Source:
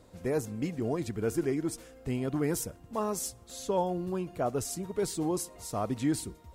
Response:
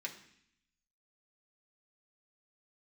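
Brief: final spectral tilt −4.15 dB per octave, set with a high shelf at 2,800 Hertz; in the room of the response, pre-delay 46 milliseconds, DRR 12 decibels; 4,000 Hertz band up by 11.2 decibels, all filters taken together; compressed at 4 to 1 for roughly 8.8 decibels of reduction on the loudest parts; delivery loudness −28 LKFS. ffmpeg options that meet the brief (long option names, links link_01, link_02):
-filter_complex "[0:a]highshelf=frequency=2800:gain=7,equalizer=frequency=4000:width_type=o:gain=8,acompressor=threshold=-35dB:ratio=4,asplit=2[link_01][link_02];[1:a]atrim=start_sample=2205,adelay=46[link_03];[link_02][link_03]afir=irnorm=-1:irlink=0,volume=-11.5dB[link_04];[link_01][link_04]amix=inputs=2:normalize=0,volume=9.5dB"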